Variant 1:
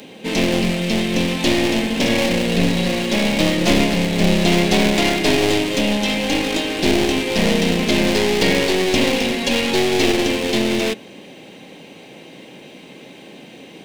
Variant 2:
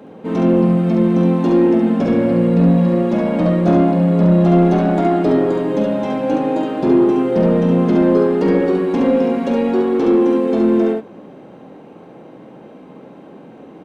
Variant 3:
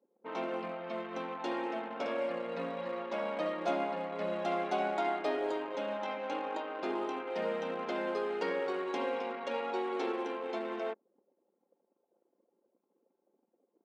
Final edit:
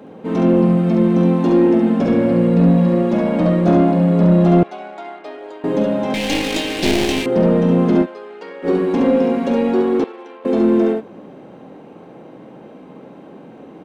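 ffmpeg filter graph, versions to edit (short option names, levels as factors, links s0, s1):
-filter_complex "[2:a]asplit=3[s0][s1][s2];[1:a]asplit=5[s3][s4][s5][s6][s7];[s3]atrim=end=4.632[s8];[s0]atrim=start=4.628:end=5.642[s9];[s4]atrim=start=5.638:end=6.142[s10];[0:a]atrim=start=6.138:end=7.262[s11];[s5]atrim=start=7.258:end=8.07[s12];[s1]atrim=start=8.01:end=8.68[s13];[s6]atrim=start=8.62:end=10.042[s14];[s2]atrim=start=10.038:end=10.452[s15];[s7]atrim=start=10.448[s16];[s8][s9]acrossfade=d=0.004:c1=hsin:c2=hsin[s17];[s17][s10]acrossfade=d=0.004:c1=hsin:c2=hsin[s18];[s18][s11]acrossfade=d=0.004:c1=hsin:c2=hsin[s19];[s19][s12]acrossfade=d=0.004:c1=hsin:c2=hsin[s20];[s20][s13]acrossfade=d=0.06:c1=tri:c2=tri[s21];[s21][s14]acrossfade=d=0.06:c1=tri:c2=tri[s22];[s22][s15]acrossfade=d=0.004:c1=hsin:c2=hsin[s23];[s23][s16]acrossfade=d=0.004:c1=hsin:c2=hsin"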